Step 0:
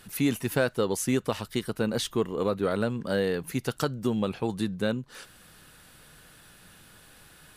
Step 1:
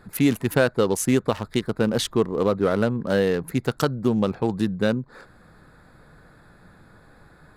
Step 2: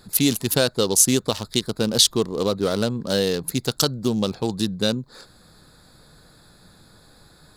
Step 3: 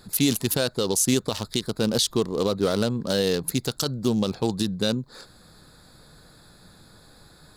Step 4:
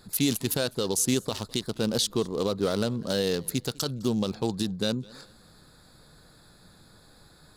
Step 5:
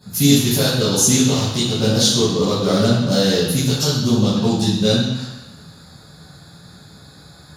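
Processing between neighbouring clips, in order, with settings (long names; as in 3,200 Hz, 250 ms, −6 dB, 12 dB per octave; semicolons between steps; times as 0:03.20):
adaptive Wiener filter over 15 samples; level +6 dB
high shelf with overshoot 2,900 Hz +12.5 dB, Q 1.5; level −1 dB
brickwall limiter −11 dBFS, peak gain reduction 9.5 dB
feedback echo with a swinging delay time 204 ms, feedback 33%, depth 140 cents, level −24 dB; level −3.5 dB
convolution reverb RT60 1.1 s, pre-delay 3 ms, DRR −12.5 dB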